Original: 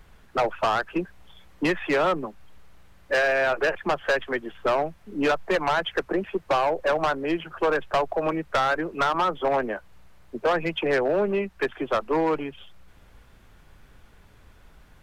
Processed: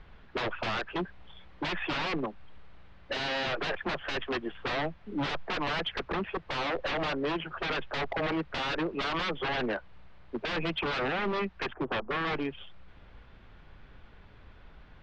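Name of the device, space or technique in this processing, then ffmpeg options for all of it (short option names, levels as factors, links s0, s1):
synthesiser wavefolder: -filter_complex "[0:a]asettb=1/sr,asplit=3[s0][s1][s2];[s0]atrim=end=11.734[s3];[s1]atrim=start=11.73:end=12.25,asetpts=PTS-STARTPTS,afade=t=in:d=0.004:c=qsin,afade=t=out:st=0.516:d=0.004:c=qsin,lowpass=f=1200:w=0.5412,lowpass=f=1200:w=1.3066[s4];[s2]atrim=start=12.246[s5];[s3][s4]acrossfade=d=0.004:c1=hsin:c2=qsin[s6];[s6][s5]acrossfade=d=0.004:c1=qsin:c2=hsin,aeval=exprs='0.0562*(abs(mod(val(0)/0.0562+3,4)-2)-1)':c=same,lowpass=f=4100:w=0.5412,lowpass=f=4100:w=1.3066"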